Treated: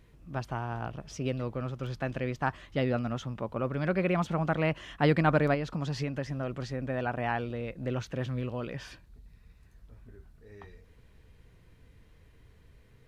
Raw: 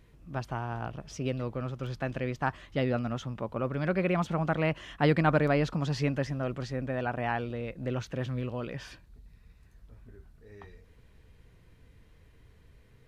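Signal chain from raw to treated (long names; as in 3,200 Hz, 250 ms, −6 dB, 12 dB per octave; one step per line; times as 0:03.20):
0:05.54–0:06.83: downward compressor, threshold −29 dBFS, peak gain reduction 6.5 dB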